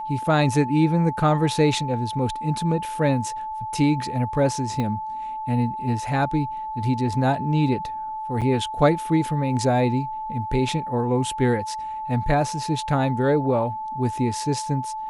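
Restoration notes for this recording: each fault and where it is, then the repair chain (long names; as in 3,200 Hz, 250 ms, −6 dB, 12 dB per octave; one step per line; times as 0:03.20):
whistle 870 Hz −28 dBFS
0:04.80: click −15 dBFS
0:08.41–0:08.42: drop-out 6.9 ms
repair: click removal
notch filter 870 Hz, Q 30
repair the gap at 0:08.41, 6.9 ms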